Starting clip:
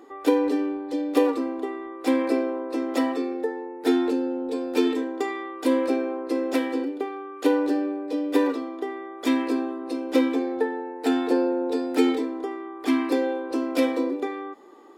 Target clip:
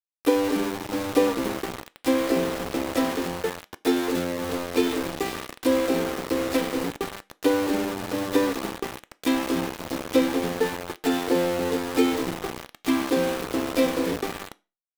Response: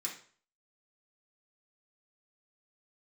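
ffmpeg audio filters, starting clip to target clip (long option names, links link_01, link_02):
-filter_complex "[0:a]asplit=5[link_01][link_02][link_03][link_04][link_05];[link_02]adelay=285,afreqshift=-88,volume=-11.5dB[link_06];[link_03]adelay=570,afreqshift=-176,volume=-20.4dB[link_07];[link_04]adelay=855,afreqshift=-264,volume=-29.2dB[link_08];[link_05]adelay=1140,afreqshift=-352,volume=-38.1dB[link_09];[link_01][link_06][link_07][link_08][link_09]amix=inputs=5:normalize=0,aeval=exprs='val(0)*gte(abs(val(0)),0.0473)':channel_layout=same,asplit=2[link_10][link_11];[1:a]atrim=start_sample=2205,asetrate=70560,aresample=44100[link_12];[link_11][link_12]afir=irnorm=-1:irlink=0,volume=-8dB[link_13];[link_10][link_13]amix=inputs=2:normalize=0"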